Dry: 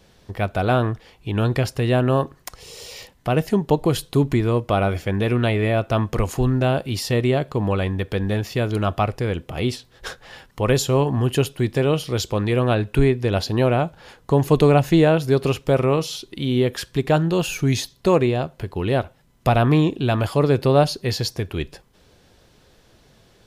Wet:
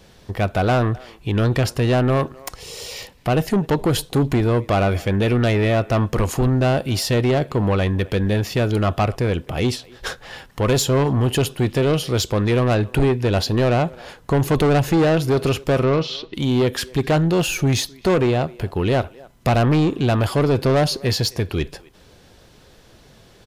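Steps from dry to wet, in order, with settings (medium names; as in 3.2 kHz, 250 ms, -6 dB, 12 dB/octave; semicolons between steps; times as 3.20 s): 15.83–16.34 s: low-pass 4.4 kHz 24 dB/octave; speakerphone echo 260 ms, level -25 dB; saturation -17.5 dBFS, distortion -10 dB; trim +5 dB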